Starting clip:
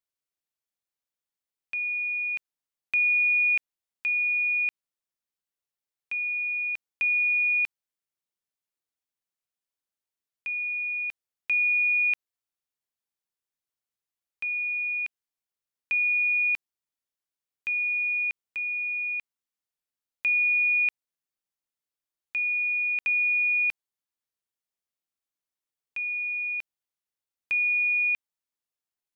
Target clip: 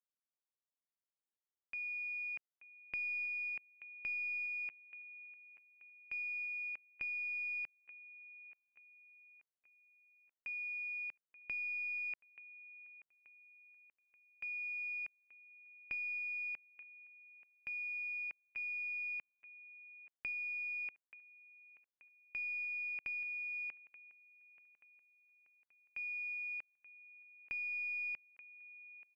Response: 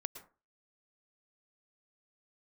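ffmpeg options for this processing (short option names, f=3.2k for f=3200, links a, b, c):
-af "acompressor=threshold=-28dB:ratio=6,aecho=1:1:881|1762|2643|3524|4405:0.2|0.104|0.054|0.0281|0.0146,adynamicsmooth=sensitivity=3.5:basefreq=1.7k,aeval=exprs='clip(val(0),-1,0.0188)':c=same,lowpass=f=2.5k:w=0.5412,lowpass=f=2.5k:w=1.3066,aemphasis=mode=production:type=bsi,volume=-7dB"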